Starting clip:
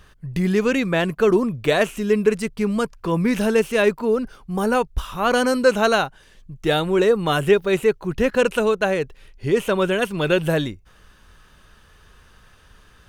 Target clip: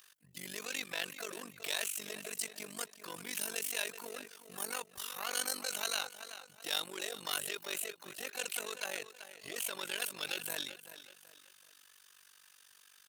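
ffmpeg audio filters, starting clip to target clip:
-filter_complex "[0:a]asplit=2[a][b];[b]asoftclip=type=tanh:threshold=-21dB,volume=-3.5dB[c];[a][c]amix=inputs=2:normalize=0,highpass=61,aecho=1:1:380|760|1140:0.188|0.0659|0.0231,asplit=2[d][e];[e]asetrate=66075,aresample=44100,atempo=0.66742,volume=-13dB[f];[d][f]amix=inputs=2:normalize=0,acrossover=split=3000[g][h];[g]alimiter=limit=-12dB:level=0:latency=1:release=26[i];[i][h]amix=inputs=2:normalize=0,tremolo=f=48:d=0.919,aderivative"

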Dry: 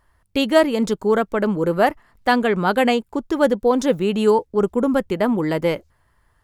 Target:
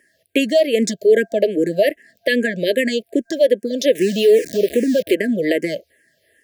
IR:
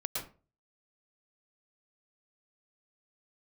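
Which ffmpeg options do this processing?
-filter_complex "[0:a]asettb=1/sr,asplit=3[a][b][c];[a]atrim=end=3.954[d];[b]atrim=start=3.95:end=5.15,asetpts=PTS-STARTPTS,afade=t=in:d=0.004:c=qsin,afade=t=out:st=1.196:d=0.004:c=qsin,aeval=exprs='val(0)+0.5*0.0562*sgn(val(0))':c=same[e];[c]atrim=start=5.146[f];[d][e]acrossfade=d=0.004:c1=hsin:c2=qsin[g];[g][f]acrossfade=d=0.004:c1=qsin:c2=hsin,afftfilt=real='re*(1-between(b*sr/4096,680,1600))':imag='im*(1-between(b*sr/4096,680,1600))':win_size=4096:overlap=0.75,highpass=340,asplit=2[h][i];[i]acompressor=threshold=-27dB:ratio=20,volume=2dB[j];[h][j]amix=inputs=2:normalize=0,alimiter=limit=-10dB:level=0:latency=1:release=79,asplit=2[k][l];[l]afreqshift=-2.5[m];[k][m]amix=inputs=2:normalize=1,volume=6dB"

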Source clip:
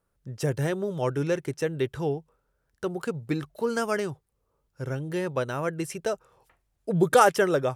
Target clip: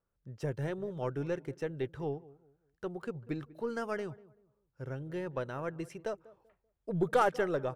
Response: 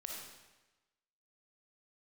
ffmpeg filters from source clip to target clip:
-filter_complex "[0:a]equalizer=f=11k:t=o:w=2:g=-12,asplit=2[a][b];[b]adelay=193,lowpass=f=990:p=1,volume=-19dB,asplit=2[c][d];[d]adelay=193,lowpass=f=990:p=1,volume=0.31,asplit=2[e][f];[f]adelay=193,lowpass=f=990:p=1,volume=0.31[g];[c][e][g]amix=inputs=3:normalize=0[h];[a][h]amix=inputs=2:normalize=0,aeval=exprs='0.473*(cos(1*acos(clip(val(0)/0.473,-1,1)))-cos(1*PI/2))+0.0168*(cos(6*acos(clip(val(0)/0.473,-1,1)))-cos(6*PI/2))':c=same,volume=-8.5dB"

